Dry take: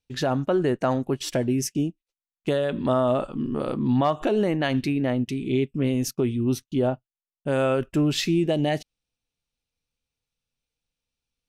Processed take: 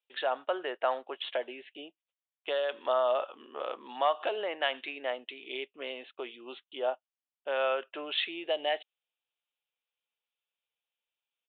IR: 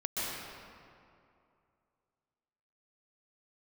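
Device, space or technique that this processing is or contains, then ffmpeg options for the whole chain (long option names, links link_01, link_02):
musical greeting card: -af "aresample=8000,aresample=44100,highpass=frequency=550:width=0.5412,highpass=frequency=550:width=1.3066,equalizer=frequency=3100:width_type=o:width=0.39:gain=4.5,volume=-3dB"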